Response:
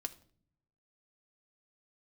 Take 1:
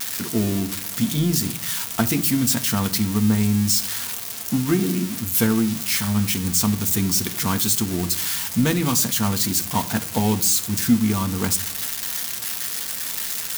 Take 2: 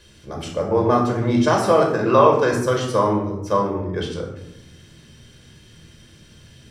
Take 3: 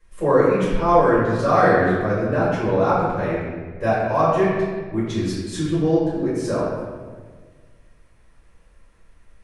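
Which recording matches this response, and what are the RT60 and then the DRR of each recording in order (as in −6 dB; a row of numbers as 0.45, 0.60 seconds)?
1; non-exponential decay, 0.85 s, 1.5 s; 6.5, −0.5, −11.5 decibels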